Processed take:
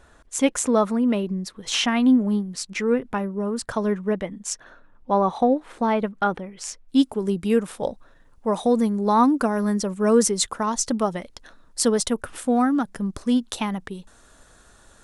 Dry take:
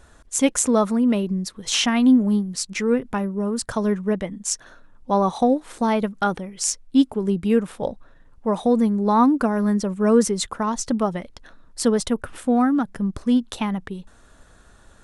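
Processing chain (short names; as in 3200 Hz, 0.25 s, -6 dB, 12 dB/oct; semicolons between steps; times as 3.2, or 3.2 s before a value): tone controls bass -4 dB, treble -5 dB, from 4.53 s treble -12 dB, from 6.87 s treble +5 dB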